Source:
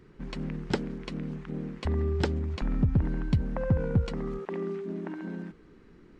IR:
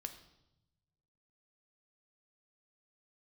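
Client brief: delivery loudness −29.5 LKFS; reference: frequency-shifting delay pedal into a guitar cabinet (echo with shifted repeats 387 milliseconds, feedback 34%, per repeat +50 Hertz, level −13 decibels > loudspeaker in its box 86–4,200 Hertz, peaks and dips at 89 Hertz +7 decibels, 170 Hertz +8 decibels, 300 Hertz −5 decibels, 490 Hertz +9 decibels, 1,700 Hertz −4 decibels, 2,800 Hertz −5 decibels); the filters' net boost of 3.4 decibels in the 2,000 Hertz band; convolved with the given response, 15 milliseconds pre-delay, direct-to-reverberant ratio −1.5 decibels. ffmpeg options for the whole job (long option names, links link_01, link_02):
-filter_complex "[0:a]equalizer=frequency=2000:width_type=o:gain=8,asplit=2[link_01][link_02];[1:a]atrim=start_sample=2205,adelay=15[link_03];[link_02][link_03]afir=irnorm=-1:irlink=0,volume=4.5dB[link_04];[link_01][link_04]amix=inputs=2:normalize=0,asplit=4[link_05][link_06][link_07][link_08];[link_06]adelay=387,afreqshift=50,volume=-13dB[link_09];[link_07]adelay=774,afreqshift=100,volume=-22.4dB[link_10];[link_08]adelay=1161,afreqshift=150,volume=-31.7dB[link_11];[link_05][link_09][link_10][link_11]amix=inputs=4:normalize=0,highpass=86,equalizer=frequency=89:width_type=q:width=4:gain=7,equalizer=frequency=170:width_type=q:width=4:gain=8,equalizer=frequency=300:width_type=q:width=4:gain=-5,equalizer=frequency=490:width_type=q:width=4:gain=9,equalizer=frequency=1700:width_type=q:width=4:gain=-4,equalizer=frequency=2800:width_type=q:width=4:gain=-5,lowpass=frequency=4200:width=0.5412,lowpass=frequency=4200:width=1.3066,volume=-5.5dB"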